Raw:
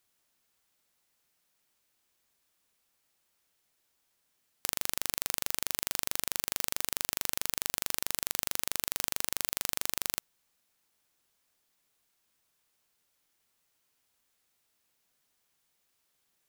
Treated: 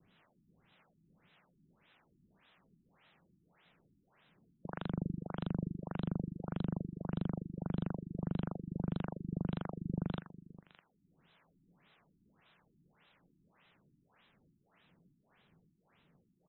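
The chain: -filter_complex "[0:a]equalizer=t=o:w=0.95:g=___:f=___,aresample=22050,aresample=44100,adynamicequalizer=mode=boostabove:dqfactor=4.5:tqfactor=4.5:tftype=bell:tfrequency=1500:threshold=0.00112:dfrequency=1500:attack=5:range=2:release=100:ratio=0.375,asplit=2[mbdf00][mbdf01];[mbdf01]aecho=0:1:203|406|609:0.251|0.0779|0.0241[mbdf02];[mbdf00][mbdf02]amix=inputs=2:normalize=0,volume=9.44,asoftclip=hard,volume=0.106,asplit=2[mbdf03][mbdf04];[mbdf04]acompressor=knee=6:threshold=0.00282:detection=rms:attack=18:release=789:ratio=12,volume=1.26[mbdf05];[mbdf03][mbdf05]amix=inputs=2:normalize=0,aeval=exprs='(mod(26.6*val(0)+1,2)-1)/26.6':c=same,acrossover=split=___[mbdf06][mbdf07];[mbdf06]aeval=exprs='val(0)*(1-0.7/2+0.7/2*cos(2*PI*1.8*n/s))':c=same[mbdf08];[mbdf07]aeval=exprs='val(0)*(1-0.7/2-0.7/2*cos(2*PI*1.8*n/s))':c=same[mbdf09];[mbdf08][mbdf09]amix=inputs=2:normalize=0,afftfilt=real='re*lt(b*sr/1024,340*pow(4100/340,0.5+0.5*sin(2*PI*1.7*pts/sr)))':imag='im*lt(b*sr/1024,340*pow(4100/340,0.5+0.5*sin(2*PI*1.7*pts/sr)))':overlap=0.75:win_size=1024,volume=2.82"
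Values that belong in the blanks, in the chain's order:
14.5, 170, 480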